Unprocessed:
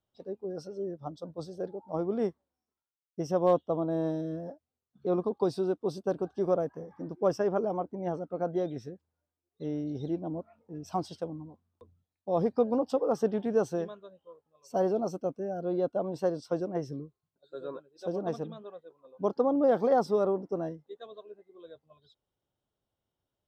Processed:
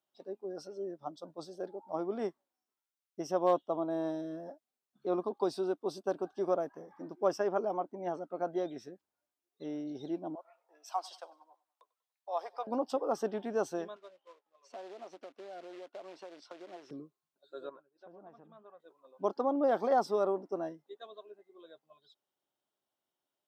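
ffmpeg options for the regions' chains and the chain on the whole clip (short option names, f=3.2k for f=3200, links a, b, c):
-filter_complex "[0:a]asettb=1/sr,asplit=3[a][b][c];[a]atrim=end=10.354[d];[b]atrim=start=10.35:end=12.67,asetpts=PTS-STARTPTS,afade=t=in:d=0.004:c=qsin,afade=t=out:st=2.316:d=0.004:c=qsin,highpass=f=660:w=0.5412,highpass=f=660:w=1.3066,aecho=1:1:96|192|288:0.0794|0.0326|0.0134,atrim=end_sample=102312[e];[c]atrim=start=12.666[f];[d][e]acrossfade=d=0.004:c1=hsin:c2=qsin[g];[g][f]acrossfade=d=0.004:c1=qsin:c2=hsin,asettb=1/sr,asplit=3[h][i][j];[h]atrim=end=13.964[k];[i]atrim=start=13.96:end=16.91,asetpts=PTS-STARTPTS,afade=t=in:d=0.004:c=qsin,afade=t=out:st=2.946:d=0.004:c=qsin,acompressor=threshold=-38dB:ratio=20:attack=3.2:release=140:knee=1:detection=peak,acrusher=bits=3:mode=log:mix=0:aa=0.000001,highpass=340,lowpass=3.8k[l];[j]atrim=start=16.906[m];[k][l]acrossfade=d=0.004:c1=hsin:c2=qsin[n];[n][m]acrossfade=d=0.004:c1=qsin:c2=hsin,asettb=1/sr,asplit=3[o][p][q];[o]atrim=end=17.694[r];[p]atrim=start=17.69:end=18.8,asetpts=PTS-STARTPTS,afade=t=in:d=0.004:c=qsin,afade=t=out:st=1.106:d=0.004:c=qsin,lowpass=1.4k,equalizer=f=380:w=0.63:g=-8.5,acompressor=threshold=-46dB:ratio=6:attack=3.2:release=140:knee=1:detection=peak[s];[q]atrim=start=18.796[t];[r][s]acrossfade=d=0.004:c1=hsin:c2=qsin[u];[u][t]acrossfade=d=0.004:c1=qsin:c2=hsin,highpass=340,equalizer=f=480:t=o:w=0.28:g=-8.5"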